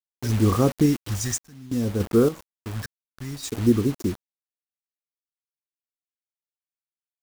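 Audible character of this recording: phasing stages 2, 0.58 Hz, lowest notch 300–3400 Hz; a quantiser's noise floor 6-bit, dither none; random-step tremolo, depth 100%

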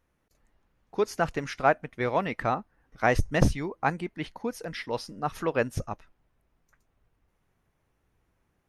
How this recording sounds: noise floor -74 dBFS; spectral tilt -5.0 dB/octave

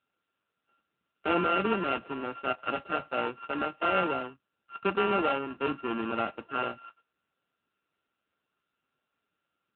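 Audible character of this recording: a buzz of ramps at a fixed pitch in blocks of 32 samples; AMR-NB

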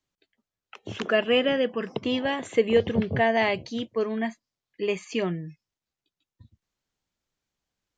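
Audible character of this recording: noise floor -91 dBFS; spectral tilt -3.5 dB/octave

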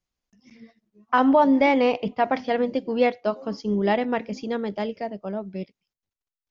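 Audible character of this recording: noise floor -92 dBFS; spectral tilt -4.0 dB/octave

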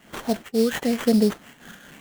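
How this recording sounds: phasing stages 8, 1 Hz, lowest notch 800–2600 Hz; aliases and images of a low sample rate 4.9 kHz, jitter 20%; random flutter of the level

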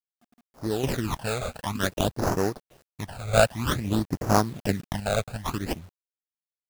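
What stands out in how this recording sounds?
aliases and images of a low sample rate 2.2 kHz, jitter 20%; phasing stages 12, 0.53 Hz, lowest notch 300–3400 Hz; a quantiser's noise floor 10-bit, dither none; random-step tremolo 1.2 Hz, depth 75%

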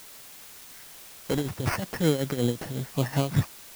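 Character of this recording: aliases and images of a low sample rate 3.6 kHz, jitter 0%; tremolo triangle 5.4 Hz, depth 80%; a quantiser's noise floor 8-bit, dither triangular

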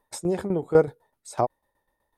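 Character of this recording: tremolo saw down 8 Hz, depth 75%

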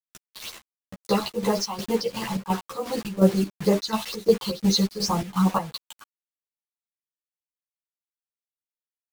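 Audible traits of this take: phasing stages 6, 2.2 Hz, lowest notch 440–5000 Hz; a quantiser's noise floor 6-bit, dither none; chopped level 2.8 Hz, depth 65%, duty 60%; a shimmering, thickened sound

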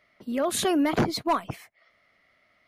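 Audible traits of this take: noise floor -67 dBFS; spectral tilt -4.0 dB/octave

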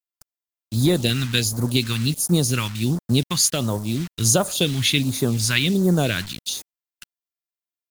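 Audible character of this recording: a quantiser's noise floor 6-bit, dither none; phasing stages 2, 1.4 Hz, lowest notch 490–2700 Hz; Nellymoser

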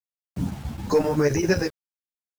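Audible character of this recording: chopped level 7.7 Hz, depth 65%, duty 80%; a quantiser's noise floor 8-bit, dither none; a shimmering, thickened sound

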